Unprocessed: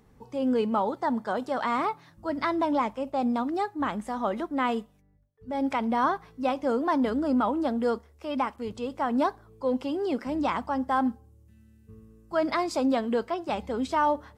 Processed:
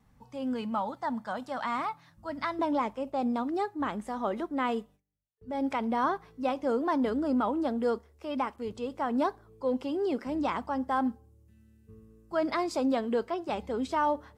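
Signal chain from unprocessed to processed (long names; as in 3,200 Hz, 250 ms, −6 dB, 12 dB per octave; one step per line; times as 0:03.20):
noise gate with hold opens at −52 dBFS
parametric band 400 Hz −14 dB 0.57 octaves, from 0:02.59 +3.5 dB
level −3.5 dB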